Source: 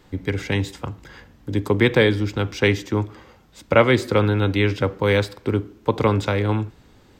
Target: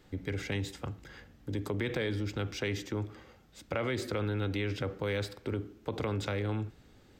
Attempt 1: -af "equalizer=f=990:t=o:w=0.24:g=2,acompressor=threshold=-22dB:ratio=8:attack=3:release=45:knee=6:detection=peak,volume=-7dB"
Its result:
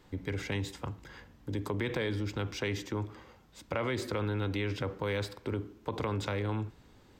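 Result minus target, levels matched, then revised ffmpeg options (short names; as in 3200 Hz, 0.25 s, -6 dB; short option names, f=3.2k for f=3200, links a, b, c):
1000 Hz band +2.5 dB
-af "equalizer=f=990:t=o:w=0.24:g=-8,acompressor=threshold=-22dB:ratio=8:attack=3:release=45:knee=6:detection=peak,volume=-7dB"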